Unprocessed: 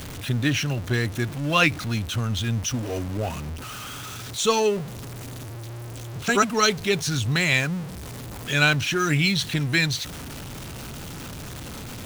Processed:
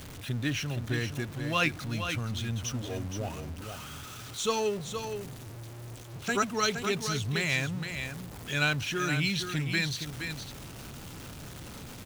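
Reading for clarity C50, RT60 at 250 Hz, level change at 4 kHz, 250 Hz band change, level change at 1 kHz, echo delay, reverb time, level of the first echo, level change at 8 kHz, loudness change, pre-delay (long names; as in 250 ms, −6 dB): no reverb audible, no reverb audible, −7.5 dB, −7.5 dB, −7.5 dB, 469 ms, no reverb audible, −7.5 dB, −7.5 dB, −8.0 dB, no reverb audible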